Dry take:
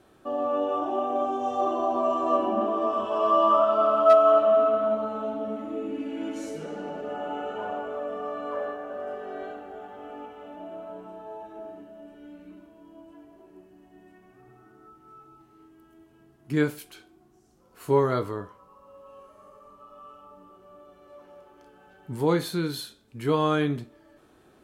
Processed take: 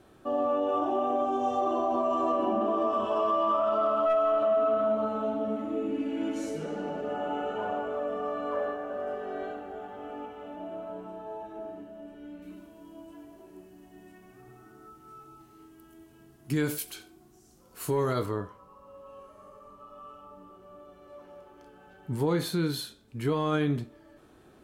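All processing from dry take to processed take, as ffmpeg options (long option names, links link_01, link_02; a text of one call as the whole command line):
ffmpeg -i in.wav -filter_complex "[0:a]asettb=1/sr,asplit=3[link_01][link_02][link_03];[link_01]atrim=end=12.424[link_04];[link_02]atrim=start=12.42:end=18.26,asetpts=PTS-STARTPTS,afade=type=in:duration=0.004:curve=qsin,afade=type=out:start_time=5.836:duration=0.004:curve=qsin,highshelf=frequency=3700:gain=11,aecho=1:1:92:0.0944,atrim=end_sample=257544[link_05];[link_03]atrim=start=18.256[link_06];[link_04][link_05]acrossfade=duration=0.004:curve1=hsin:curve2=qsin[link_07];[link_07][link_06]acrossfade=duration=0.004:curve1=qsin:curve2=hsin,acontrast=48,lowshelf=frequency=240:gain=4,alimiter=limit=-13dB:level=0:latency=1:release=59,volume=-6dB" out.wav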